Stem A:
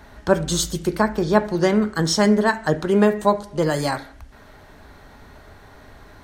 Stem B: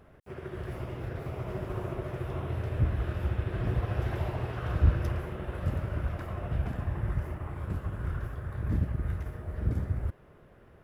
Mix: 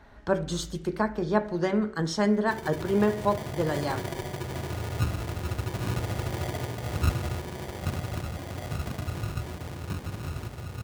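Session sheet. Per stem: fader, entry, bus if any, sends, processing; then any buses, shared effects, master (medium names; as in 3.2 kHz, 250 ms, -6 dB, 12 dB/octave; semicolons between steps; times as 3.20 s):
-7.0 dB, 0.00 s, no send, treble shelf 5.6 kHz -11.5 dB
+2.5 dB, 2.20 s, no send, sample-and-hold 33×; high-pass 94 Hz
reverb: none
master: de-hum 62.97 Hz, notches 10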